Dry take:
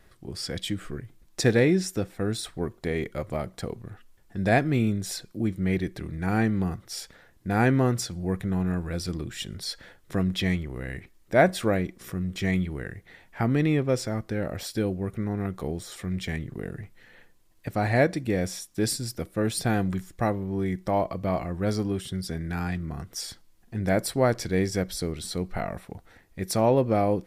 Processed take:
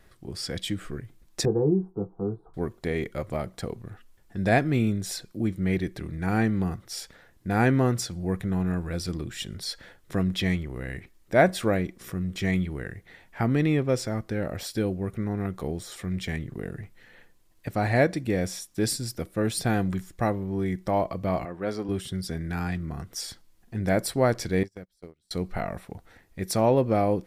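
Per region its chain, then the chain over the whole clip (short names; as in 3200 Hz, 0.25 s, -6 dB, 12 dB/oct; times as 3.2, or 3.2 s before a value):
1.45–2.54 inverse Chebyshev low-pass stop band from 2500 Hz, stop band 50 dB + fixed phaser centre 390 Hz, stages 8 + doubler 20 ms -7.5 dB
21.45–21.89 HPF 120 Hz + tone controls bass -9 dB, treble -10 dB
24.63–25.31 gate -27 dBFS, range -37 dB + compressor, threshold -37 dBFS
whole clip: dry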